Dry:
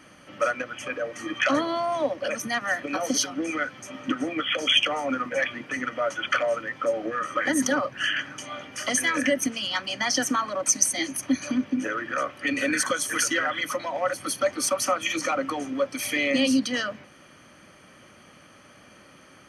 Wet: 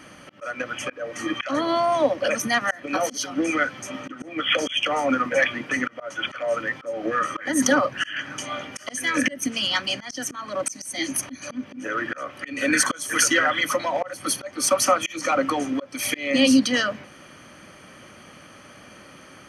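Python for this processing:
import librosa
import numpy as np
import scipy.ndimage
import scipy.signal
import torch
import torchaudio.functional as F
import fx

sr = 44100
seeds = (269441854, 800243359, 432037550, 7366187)

y = fx.dynamic_eq(x, sr, hz=860.0, q=0.81, threshold_db=-35.0, ratio=4.0, max_db=-4, at=(8.93, 11.35))
y = fx.auto_swell(y, sr, attack_ms=300.0)
y = y * 10.0 ** (5.5 / 20.0)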